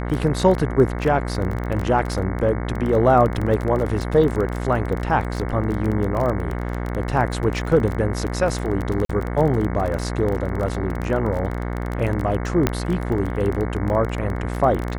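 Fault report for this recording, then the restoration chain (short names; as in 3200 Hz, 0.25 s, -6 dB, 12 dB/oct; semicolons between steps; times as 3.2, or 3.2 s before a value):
buzz 60 Hz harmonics 37 -26 dBFS
crackle 23/s -24 dBFS
9.05–9.09 gap 43 ms
12.67 pop -4 dBFS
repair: de-click; de-hum 60 Hz, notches 37; interpolate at 9.05, 43 ms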